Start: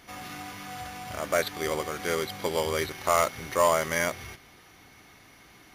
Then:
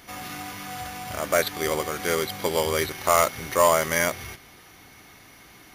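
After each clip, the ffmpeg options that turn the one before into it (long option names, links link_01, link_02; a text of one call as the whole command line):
ffmpeg -i in.wav -af "highshelf=frequency=10000:gain=7,volume=3.5dB" out.wav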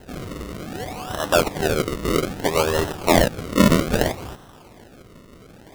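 ffmpeg -i in.wav -af "acrusher=samples=37:mix=1:aa=0.000001:lfo=1:lforange=37:lforate=0.62,volume=4dB" out.wav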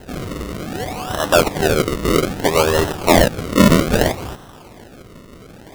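ffmpeg -i in.wav -af "asoftclip=type=tanh:threshold=-6.5dB,volume=5.5dB" out.wav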